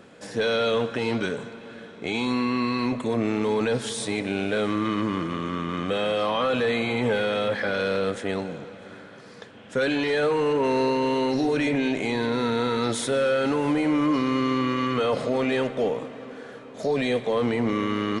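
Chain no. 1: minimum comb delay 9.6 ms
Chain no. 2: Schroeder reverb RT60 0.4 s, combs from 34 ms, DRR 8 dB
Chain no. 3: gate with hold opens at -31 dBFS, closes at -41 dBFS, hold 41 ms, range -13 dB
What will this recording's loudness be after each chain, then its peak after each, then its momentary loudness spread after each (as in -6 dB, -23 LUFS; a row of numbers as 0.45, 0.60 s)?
-26.5, -24.0, -25.0 LUFS; -14.5, -11.5, -14.0 dBFS; 12, 11, 9 LU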